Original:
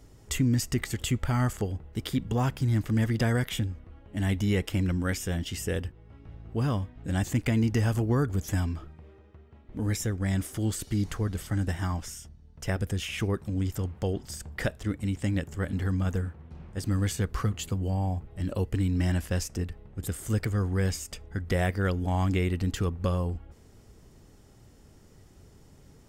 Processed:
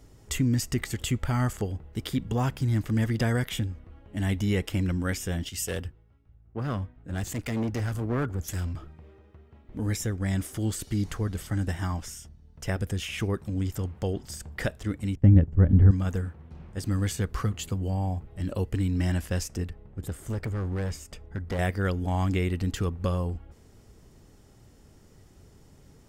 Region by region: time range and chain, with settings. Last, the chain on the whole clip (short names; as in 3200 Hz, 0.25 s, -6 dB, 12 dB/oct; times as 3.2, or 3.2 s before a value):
5.49–8.75 bell 1400 Hz +4 dB 0.27 oct + overloaded stage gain 26 dB + three-band expander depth 100%
15.15–15.91 expander -35 dBFS + LPF 1700 Hz 6 dB/oct + tilt -4 dB/oct
19.7–21.59 high shelf 2500 Hz -8 dB + hard clip -26.5 dBFS
whole clip: dry